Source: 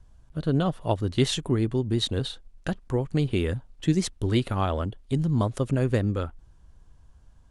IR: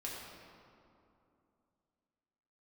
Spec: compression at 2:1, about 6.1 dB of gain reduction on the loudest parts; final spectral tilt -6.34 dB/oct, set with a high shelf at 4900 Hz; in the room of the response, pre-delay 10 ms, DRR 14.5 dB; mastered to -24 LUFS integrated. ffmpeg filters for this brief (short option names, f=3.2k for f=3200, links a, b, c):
-filter_complex "[0:a]highshelf=f=4.9k:g=-3,acompressor=threshold=-29dB:ratio=2,asplit=2[a][b];[1:a]atrim=start_sample=2205,adelay=10[c];[b][c]afir=irnorm=-1:irlink=0,volume=-15dB[d];[a][d]amix=inputs=2:normalize=0,volume=7.5dB"